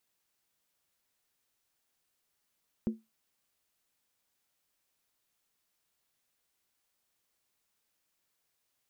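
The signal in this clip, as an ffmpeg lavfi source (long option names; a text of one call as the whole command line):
ffmpeg -f lavfi -i "aevalsrc='0.0668*pow(10,-3*t/0.21)*sin(2*PI*222*t)+0.0211*pow(10,-3*t/0.166)*sin(2*PI*353.9*t)+0.00668*pow(10,-3*t/0.144)*sin(2*PI*474.2*t)+0.00211*pow(10,-3*t/0.139)*sin(2*PI*509.7*t)+0.000668*pow(10,-3*t/0.129)*sin(2*PI*589*t)':duration=0.63:sample_rate=44100" out.wav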